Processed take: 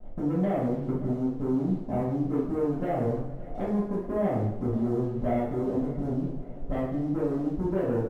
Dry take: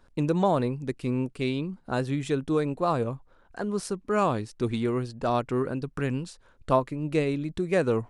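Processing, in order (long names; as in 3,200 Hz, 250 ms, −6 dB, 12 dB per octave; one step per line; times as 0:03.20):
spike at every zero crossing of −27 dBFS
Butterworth low-pass 800 Hz 96 dB per octave
low-shelf EQ 86 Hz +10 dB
downward compressor 6 to 1, threshold −34 dBFS, peak gain reduction 14.5 dB
leveller curve on the samples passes 2
pitch vibrato 7.2 Hz 5.7 cents
on a send: repeating echo 571 ms, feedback 53%, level −18 dB
on the sum: coupled-rooms reverb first 0.7 s, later 2.1 s, from −18 dB, DRR −9.5 dB
level −5.5 dB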